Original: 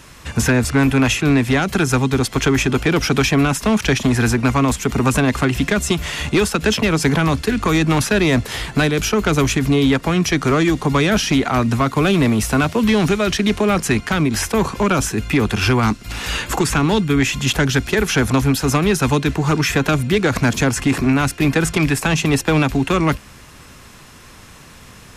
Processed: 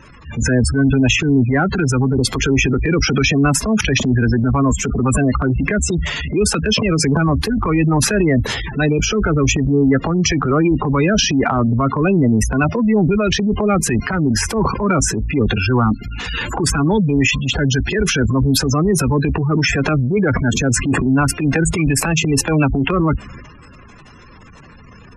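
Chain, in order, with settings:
gate on every frequency bin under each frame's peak −15 dB strong
transient designer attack −7 dB, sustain +7 dB
level +2 dB

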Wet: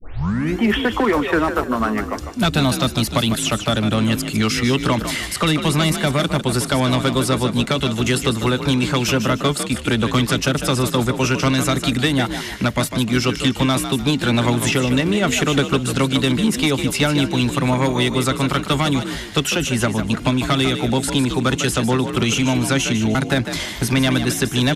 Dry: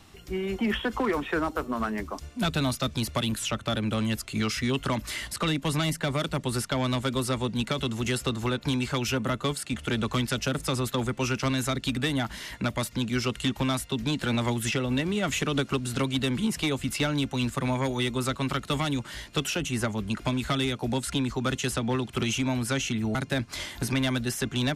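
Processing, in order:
turntable start at the beginning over 0.57 s
echo with shifted repeats 151 ms, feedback 33%, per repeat +43 Hz, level −9 dB
level +9 dB

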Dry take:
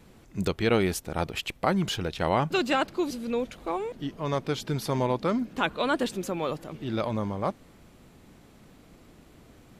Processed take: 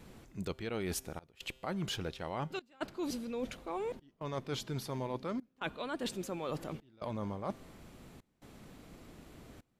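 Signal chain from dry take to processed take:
reversed playback
downward compressor 10 to 1, threshold −34 dBFS, peak gain reduction 16 dB
reversed playback
tuned comb filter 130 Hz, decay 1.6 s, mix 40%
gate pattern "xxxxxxxxxxx.." 139 BPM −24 dB
level +4 dB

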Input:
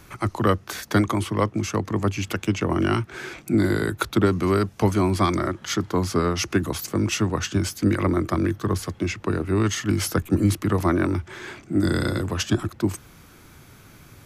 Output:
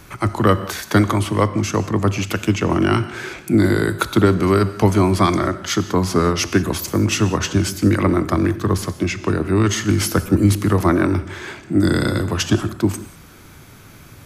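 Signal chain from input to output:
reverb whose tail is shaped and stops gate 210 ms flat, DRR 12 dB
level +5 dB

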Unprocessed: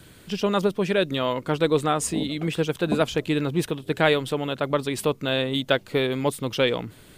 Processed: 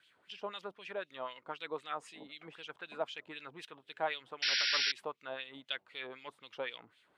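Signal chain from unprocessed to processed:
auto-filter band-pass sine 3.9 Hz 790–3,300 Hz
sound drawn into the spectrogram noise, 0:04.42–0:04.92, 1,400–5,700 Hz −23 dBFS
level −8.5 dB

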